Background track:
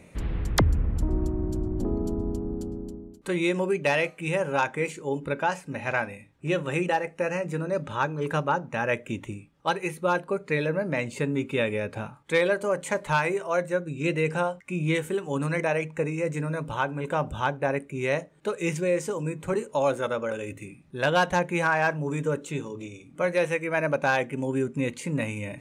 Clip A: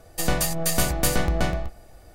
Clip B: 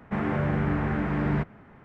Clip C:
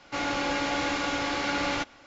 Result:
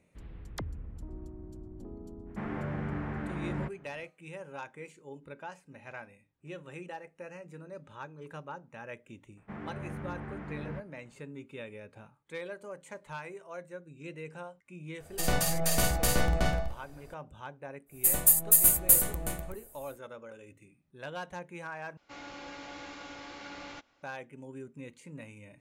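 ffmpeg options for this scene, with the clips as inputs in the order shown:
-filter_complex "[2:a]asplit=2[a][b];[1:a]asplit=2[c][d];[0:a]volume=-17.5dB[e];[c]asplit=2[f][g];[g]adelay=50,volume=-4dB[h];[f][h]amix=inputs=2:normalize=0[i];[d]aexciter=amount=7.5:drive=9.1:freq=7.7k[j];[e]asplit=2[k][l];[k]atrim=end=21.974[m];[3:a]atrim=end=2.06,asetpts=PTS-STARTPTS,volume=-16.5dB[n];[l]atrim=start=24.026[o];[a]atrim=end=1.84,asetpts=PTS-STARTPTS,volume=-9.5dB,afade=t=in:d=0.05,afade=t=out:st=1.79:d=0.05,adelay=2250[p];[b]atrim=end=1.84,asetpts=PTS-STARTPTS,volume=-14.5dB,afade=t=in:d=0.004:c=hsin,afade=t=out:st=1.836:d=0.004:c=hsin,adelay=9370[q];[i]atrim=end=2.14,asetpts=PTS-STARTPTS,volume=-6dB,afade=t=in:d=0.004:c=hsin,afade=t=out:st=2.136:d=0.004:c=hsin,adelay=15000[r];[j]atrim=end=2.14,asetpts=PTS-STARTPTS,volume=-13.5dB,afade=t=in:d=0.1,afade=t=out:st=2.04:d=0.1,adelay=17860[s];[m][n]acrossfade=d=0.004:c1=hsin:c2=hsin[t];[t][o]acrossfade=d=0.004:c1=hsin:c2=hsin[u];[u][p][q][r][s]amix=inputs=5:normalize=0"

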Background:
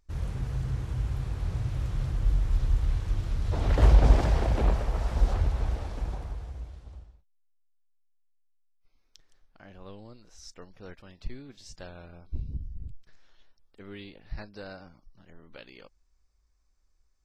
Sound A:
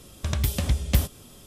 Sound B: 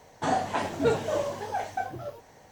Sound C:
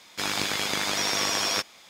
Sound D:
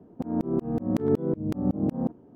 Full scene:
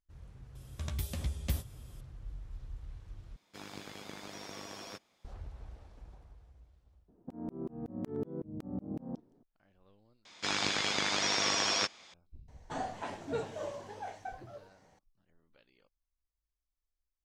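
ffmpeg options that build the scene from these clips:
-filter_complex "[3:a]asplit=2[a][b];[0:a]volume=-19.5dB[c];[1:a]asplit=2[d][e];[e]adelay=13,volume=-8dB[f];[d][f]amix=inputs=2:normalize=0[g];[a]tiltshelf=f=810:g=6[h];[b]lowpass=f=7.2k:w=0.5412,lowpass=f=7.2k:w=1.3066[i];[2:a]lowpass=10k[j];[c]asplit=3[k][l][m];[k]atrim=end=3.364[n];[h]atrim=end=1.89,asetpts=PTS-STARTPTS,volume=-17.5dB[o];[l]atrim=start=5.246:end=10.254[p];[i]atrim=end=1.89,asetpts=PTS-STARTPTS,volume=-4dB[q];[m]atrim=start=12.136[r];[g]atrim=end=1.46,asetpts=PTS-STARTPTS,volume=-13dB,afade=t=in:d=0.004:c=hsin,afade=t=out:st=1.456:d=0.004:c=hsin,adelay=550[s];[4:a]atrim=end=2.35,asetpts=PTS-STARTPTS,volume=-13.5dB,afade=t=in:d=0.004:c=hsin,afade=t=out:st=2.346:d=0.004:c=hsin,adelay=7080[t];[j]atrim=end=2.51,asetpts=PTS-STARTPTS,volume=-11.5dB,afade=t=in:d=0.004:c=hsin,afade=t=out:st=2.506:d=0.004:c=hsin,adelay=12480[u];[n][o]acrossfade=d=0.004:c1=hsin:c2=hsin[v];[v][p]acrossfade=d=0.004:c1=hsin:c2=hsin[w];[w][q]acrossfade=d=0.004:c1=hsin:c2=hsin[x];[x][r]acrossfade=d=0.004:c1=hsin:c2=hsin[y];[y][s][t][u]amix=inputs=4:normalize=0"

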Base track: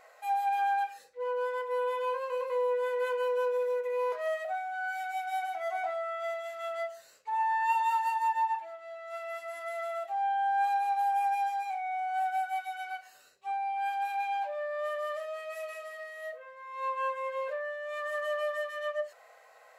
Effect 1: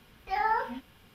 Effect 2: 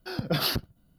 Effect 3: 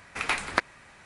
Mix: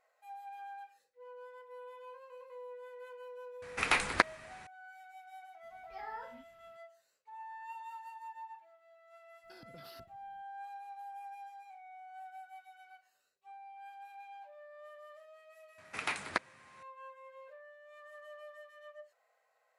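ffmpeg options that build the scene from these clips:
-filter_complex "[3:a]asplit=2[a][b];[0:a]volume=-18.5dB[c];[2:a]acompressor=threshold=-39dB:ratio=6:attack=3.2:release=140:knee=1:detection=peak[d];[b]highpass=f=87:w=0.5412,highpass=f=87:w=1.3066[e];[a]atrim=end=1.05,asetpts=PTS-STARTPTS,volume=-1dB,afade=t=in:d=0.004:c=hsin,afade=t=out:st=1.046:d=0.004:c=hsin,adelay=3620[f];[1:a]atrim=end=1.14,asetpts=PTS-STARTPTS,volume=-17dB,afade=t=in:d=0.004:c=hsin,afade=t=out:st=1.136:d=0.004:c=hsin,adelay=5630[g];[d]atrim=end=0.98,asetpts=PTS-STARTPTS,volume=-13.5dB,afade=t=in:d=0.004:c=hsin,afade=t=out:st=0.976:d=0.004:c=hsin,adelay=9440[h];[e]atrim=end=1.05,asetpts=PTS-STARTPTS,volume=-8dB,afade=t=in:d=0.004:c=hsin,afade=t=out:st=1.046:d=0.004:c=hsin,adelay=15780[i];[c][f][g][h][i]amix=inputs=5:normalize=0"

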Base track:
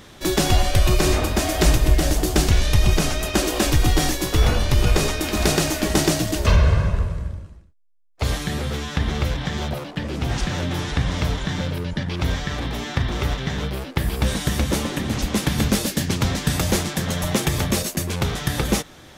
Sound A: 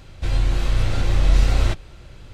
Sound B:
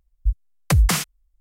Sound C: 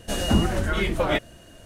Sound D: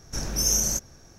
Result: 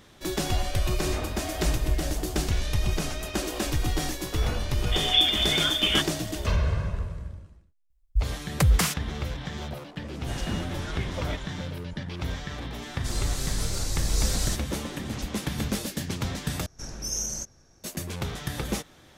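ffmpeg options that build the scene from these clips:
-filter_complex "[3:a]asplit=2[a][b];[0:a]volume=-9dB[c];[a]lowpass=f=3.1k:t=q:w=0.5098,lowpass=f=3.1k:t=q:w=0.6013,lowpass=f=3.1k:t=q:w=0.9,lowpass=f=3.1k:t=q:w=2.563,afreqshift=-3600[d];[1:a]aexciter=amount=10.1:drive=5:freq=4.4k[e];[4:a]lowpass=f=11k:w=0.5412,lowpass=f=11k:w=1.3066[f];[c]asplit=2[g][h];[g]atrim=end=16.664[i];[f]atrim=end=1.18,asetpts=PTS-STARTPTS,volume=-7.5dB[j];[h]atrim=start=17.836[k];[d]atrim=end=1.65,asetpts=PTS-STARTPTS,volume=-2dB,afade=t=in:d=0.004:c=hsin,afade=t=out:st=1.646:d=0.004:c=hsin,adelay=4830[l];[2:a]atrim=end=1.4,asetpts=PTS-STARTPTS,volume=-3.5dB,afade=t=in:d=0.004:c=hsin,afade=t=out:st=1.396:d=0.004:c=hsin,adelay=7900[m];[b]atrim=end=1.65,asetpts=PTS-STARTPTS,volume=-12.5dB,afade=t=in:d=0.004:c=hsin,afade=t=out:st=1.646:d=0.004:c=hsin,adelay=448938S[n];[e]atrim=end=2.33,asetpts=PTS-STARTPTS,volume=-11dB,afade=t=in:d=0.004:c=hsin,afade=t=out:st=2.326:d=0.004:c=hsin,adelay=12820[o];[i][j]acrossfade=d=0.004:c1=hsin:c2=hsin[p];[p][k]acrossfade=d=0.004:c1=hsin:c2=hsin[q];[q][l][m][n][o]amix=inputs=5:normalize=0"

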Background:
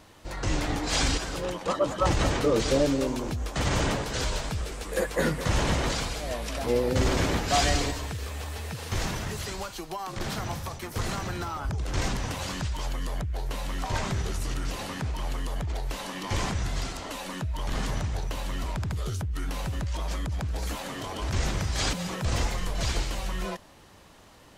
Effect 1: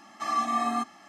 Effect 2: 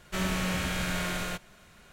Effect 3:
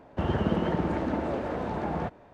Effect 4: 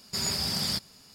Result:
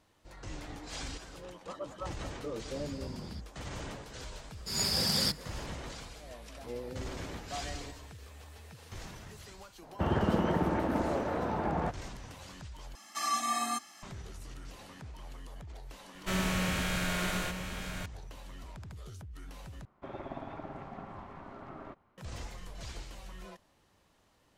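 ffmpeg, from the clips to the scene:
-filter_complex "[4:a]asplit=2[a][b];[3:a]asplit=2[c][d];[0:a]volume=-15.5dB[e];[a]aemphasis=mode=reproduction:type=riaa[f];[b]dynaudnorm=f=140:g=3:m=14dB[g];[c]equalizer=f=1.1k:t=o:w=1.4:g=3[h];[1:a]crystalizer=i=7.5:c=0[i];[2:a]aecho=1:1:922:0.376[j];[d]aeval=exprs='val(0)*sin(2*PI*470*n/s)':c=same[k];[e]asplit=3[l][m][n];[l]atrim=end=12.954[o];[i]atrim=end=1.08,asetpts=PTS-STARTPTS,volume=-9.5dB[p];[m]atrim=start=14.026:end=19.854[q];[k]atrim=end=2.33,asetpts=PTS-STARTPTS,volume=-13dB[r];[n]atrim=start=22.176[s];[f]atrim=end=1.14,asetpts=PTS-STARTPTS,volume=-17dB,afade=t=in:d=0.004:c=hsin,afade=t=out:st=1.136:d=0.004:c=hsin,adelay=2620[t];[g]atrim=end=1.14,asetpts=PTS-STARTPTS,volume=-13dB,afade=t=in:d=0.004:c=hsin,afade=t=out:st=1.136:d=0.004:c=hsin,adelay=199773S[u];[h]atrim=end=2.33,asetpts=PTS-STARTPTS,volume=-2.5dB,afade=t=in:d=0.004:c=hsin,afade=t=out:st=2.326:d=0.004:c=hsin,adelay=9820[v];[j]atrim=end=1.92,asetpts=PTS-STARTPTS,volume=-1.5dB,afade=t=in:d=0.004:c=hsin,afade=t=out:st=1.916:d=0.004:c=hsin,adelay=16140[w];[o][p]acrossfade=d=0.004:c1=hsin:c2=hsin[x];[x][q]acrossfade=d=0.004:c1=hsin:c2=hsin[y];[y][r]acrossfade=d=0.004:c1=hsin:c2=hsin[z];[z][s]acrossfade=d=0.004:c1=hsin:c2=hsin[aa];[aa][t][u][v][w]amix=inputs=5:normalize=0"

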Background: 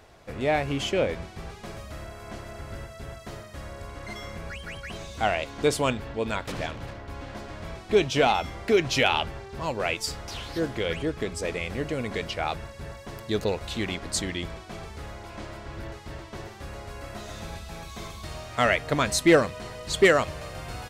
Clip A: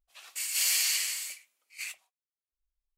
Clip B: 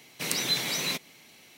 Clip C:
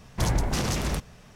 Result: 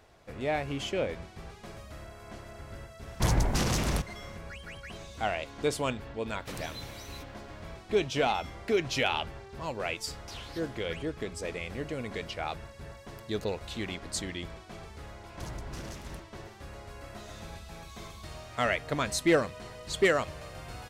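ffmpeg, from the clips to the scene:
-filter_complex "[3:a]asplit=2[a][b];[0:a]volume=-6dB[c];[a]atrim=end=1.35,asetpts=PTS-STARTPTS,volume=-1dB,afade=t=in:d=0.004:c=hsin,afade=t=out:st=1.346:d=0.004:c=hsin,adelay=3020[d];[2:a]atrim=end=1.57,asetpts=PTS-STARTPTS,volume=-18dB,afade=t=in:d=0.004:c=hsin,afade=t=out:st=1.566:d=0.004:c=hsin,adelay=276066S[e];[b]atrim=end=1.35,asetpts=PTS-STARTPTS,volume=-16.5dB,afade=t=in:d=0.004:c=hsin,afade=t=out:st=1.346:d=0.004:c=hsin,adelay=15200[f];[c][d][e][f]amix=inputs=4:normalize=0"

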